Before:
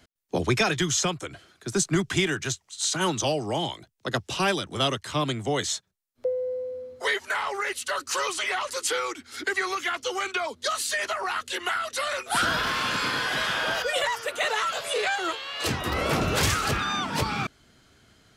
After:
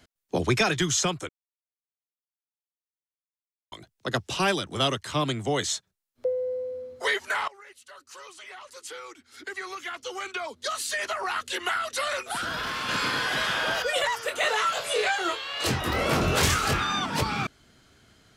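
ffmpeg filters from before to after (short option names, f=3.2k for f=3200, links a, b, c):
-filter_complex "[0:a]asettb=1/sr,asplit=3[a][b][c];[a]atrim=end=12.204[d];[b]atrim=start=12.2:end=12.89,asetpts=PTS-STARTPTS,afade=t=in:d=0.004:c=qsin,afade=t=out:st=0.686:d=0.004:c=qsin,acompressor=threshold=-27dB:ratio=6:attack=3.2:release=140:knee=1:detection=peak[e];[c]atrim=start=12.886[f];[d][e]acrossfade=d=0.004:c1=hsin:c2=qsin[g];[g][f]acrossfade=d=0.004:c1=qsin:c2=hsin,asettb=1/sr,asplit=3[h][i][j];[h]atrim=end=14.234[k];[i]atrim=start=14.23:end=17.06,asetpts=PTS-STARTPTS,afade=t=in:d=0.004:c=qsin,afade=t=out:st=2.826:d=0.004:c=qsin,asplit=2[l][m];[m]adelay=23,volume=-6dB[n];[l][n]amix=inputs=2:normalize=0,atrim=end_sample=124803[o];[j]atrim=start=17.056[p];[k][o]acrossfade=d=0.004:c1=hsin:c2=qsin[q];[q][p]acrossfade=d=0.004:c1=qsin:c2=hsin,asplit=4[r][s][t][u];[r]atrim=end=1.29,asetpts=PTS-STARTPTS,afade=t=out:st=1.286:d=0.004:c=hsin[v];[s]atrim=start=1.29:end=3.72,asetpts=PTS-STARTPTS,volume=0[w];[t]atrim=start=3.72:end=7.48,asetpts=PTS-STARTPTS,afade=t=in:d=0.004:c=hsin,afade=t=out:st=3.756:d=0.004:c=hsin:silence=0.1[x];[u]atrim=start=7.48,asetpts=PTS-STARTPTS,afade=t=in:d=3.95:c=qua:silence=0.1[y];[v][w][x][y]concat=n=4:v=0:a=1"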